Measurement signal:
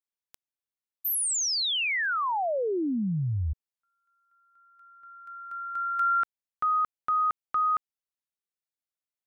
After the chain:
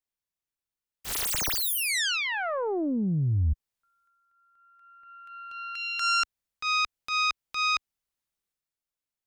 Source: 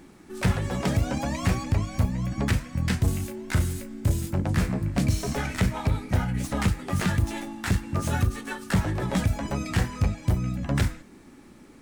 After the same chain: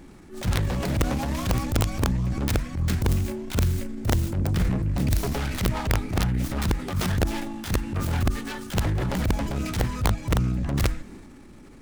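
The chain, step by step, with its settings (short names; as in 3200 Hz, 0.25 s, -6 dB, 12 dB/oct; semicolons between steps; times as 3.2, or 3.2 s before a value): self-modulated delay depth 0.39 ms; low shelf 100 Hz +11.5 dB; in parallel at -2 dB: compressor 5:1, threshold -26 dBFS; on the sum: transient shaper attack -9 dB, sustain +5 dB; wrapped overs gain 10 dB; gain -4.5 dB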